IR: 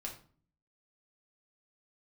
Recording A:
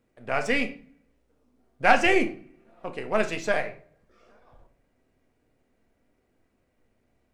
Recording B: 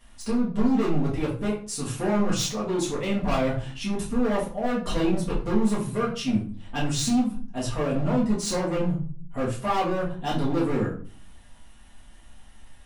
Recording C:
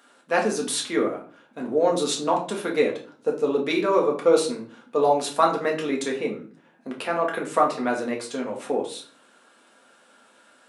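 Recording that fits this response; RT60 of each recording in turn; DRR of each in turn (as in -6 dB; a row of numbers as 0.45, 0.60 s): C; 0.45, 0.45, 0.45 s; 5.5, -7.5, -1.5 dB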